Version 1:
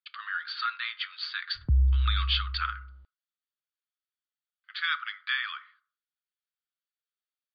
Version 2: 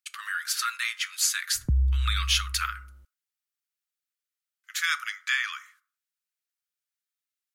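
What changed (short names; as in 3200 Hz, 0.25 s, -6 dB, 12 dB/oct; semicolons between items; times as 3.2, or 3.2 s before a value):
background: add bell 76 Hz -8 dB 1.1 oct; master: remove rippled Chebyshev low-pass 4700 Hz, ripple 6 dB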